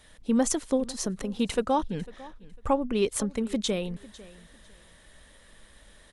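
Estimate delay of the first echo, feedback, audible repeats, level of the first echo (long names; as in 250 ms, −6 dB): 500 ms, 23%, 2, −20.0 dB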